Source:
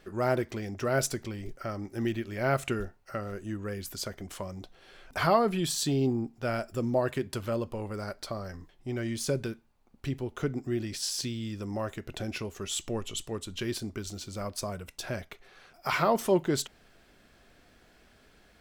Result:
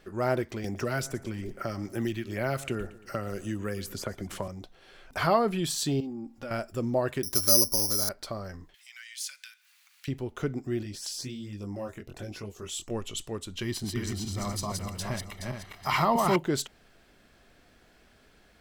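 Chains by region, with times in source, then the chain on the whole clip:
0.64–4.48 s: LFO notch sine 2.4 Hz 450–5600 Hz + feedback delay 115 ms, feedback 40%, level -19 dB + three bands compressed up and down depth 70%
6.00–6.51 s: comb 3.6 ms, depth 75% + compression 4:1, threshold -36 dBFS
7.23–8.09 s: low-pass 2 kHz + comb 3.2 ms, depth 36% + careless resampling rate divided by 8×, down none, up zero stuff
8.74–10.08 s: inverse Chebyshev high-pass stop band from 400 Hz, stop band 70 dB + upward compressor, threshold -42 dBFS
10.83–12.91 s: chorus 1.3 Hz, delay 19.5 ms, depth 3.8 ms + LFO notch saw up 4.3 Hz 770–5200 Hz
13.62–16.36 s: backward echo that repeats 211 ms, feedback 56%, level -2 dB + comb 1 ms, depth 54%
whole clip: none

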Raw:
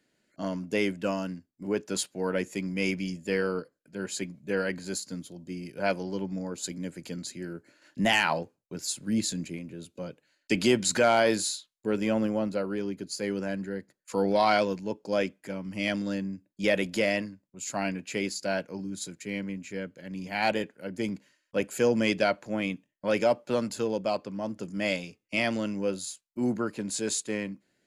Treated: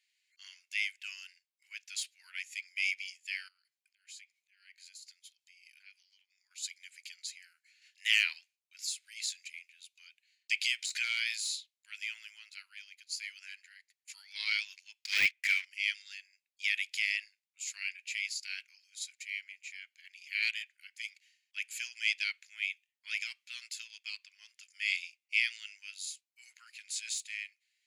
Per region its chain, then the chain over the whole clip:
3.48–6.51 s: compression 10:1, threshold -43 dBFS + slow attack 151 ms
15.04–15.65 s: low-pass 12 kHz + peaking EQ 2 kHz +11.5 dB 1.9 oct + waveshaping leveller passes 3
whole clip: elliptic high-pass 2.2 kHz, stop band 80 dB; de-esser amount 55%; treble shelf 4.4 kHz -10 dB; trim +4.5 dB

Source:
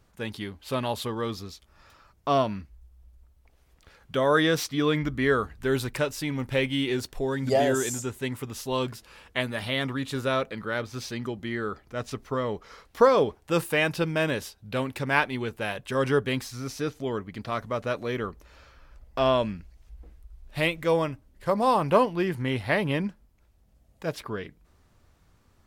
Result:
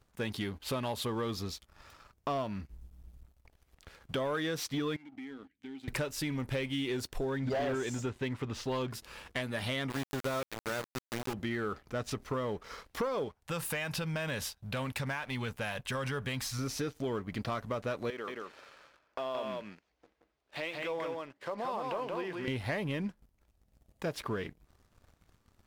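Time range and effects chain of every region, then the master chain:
4.96–5.88 s: vowel filter i + compression 10:1, threshold -40 dBFS + bass shelf 270 Hz -7 dB
7.23–8.91 s: low-pass 4 kHz + hard clipper -21 dBFS
9.90–11.34 s: treble shelf 4.6 kHz -9 dB + small samples zeroed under -29 dBFS
13.28–16.59 s: peaking EQ 350 Hz -13 dB 0.76 oct + compression 3:1, threshold -32 dBFS
18.10–22.48 s: band-pass 350–4800 Hz + compression 2.5:1, threshold -40 dBFS + delay 176 ms -3.5 dB
whole clip: compression 6:1, threshold -33 dBFS; waveshaping leveller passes 2; trim -5 dB

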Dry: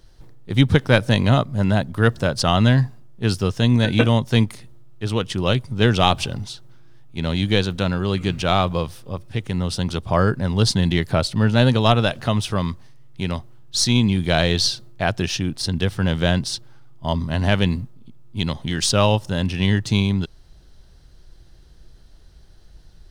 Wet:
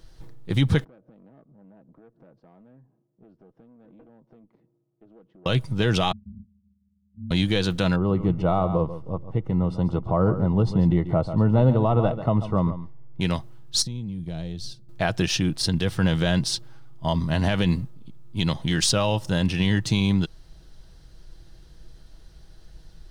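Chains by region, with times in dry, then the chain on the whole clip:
0.84–5.46 s: compression, threshold -31 dBFS + ladder band-pass 350 Hz, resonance 20% + valve stage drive 45 dB, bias 0.35
6.12–7.31 s: Butterworth band-pass 150 Hz, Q 6.1 + ring modulator 61 Hz
7.96–13.21 s: Savitzky-Golay filter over 65 samples + delay 140 ms -13 dB
13.82–14.89 s: gate -26 dBFS, range -7 dB + FFT filter 180 Hz 0 dB, 1.4 kHz -18 dB, 9.2 kHz -12 dB + compression 4:1, threshold -30 dBFS
whole clip: comb 6.2 ms, depth 31%; peak limiter -10.5 dBFS

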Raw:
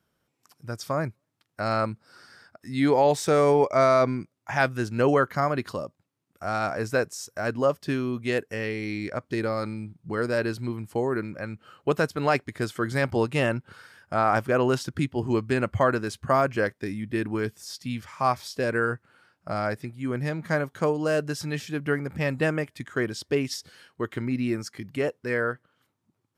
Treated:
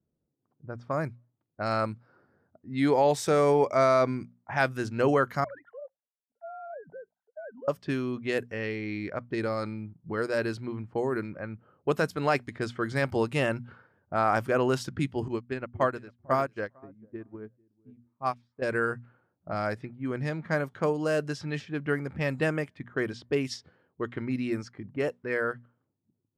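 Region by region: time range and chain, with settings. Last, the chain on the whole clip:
5.44–7.68 s: formants replaced by sine waves + compression 10:1, threshold -32 dBFS + static phaser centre 1.7 kHz, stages 8
15.28–18.62 s: feedback delay 450 ms, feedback 18%, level -12 dB + upward expansion 2.5:1, over -35 dBFS
whole clip: hum notches 60/120/180/240 Hz; level-controlled noise filter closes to 390 Hz, open at -22.5 dBFS; trim -2.5 dB

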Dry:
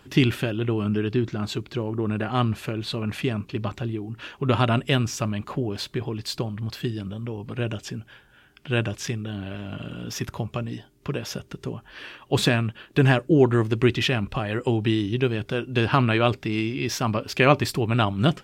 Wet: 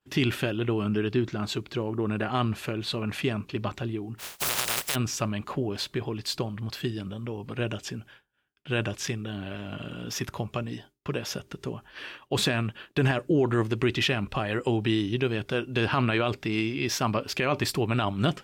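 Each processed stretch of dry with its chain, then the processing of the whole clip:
4.18–4.94 s: spectral contrast reduction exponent 0.15 + peaking EQ 270 Hz -11.5 dB 0.29 oct
whole clip: expander -41 dBFS; bass shelf 240 Hz -5 dB; peak limiter -14.5 dBFS

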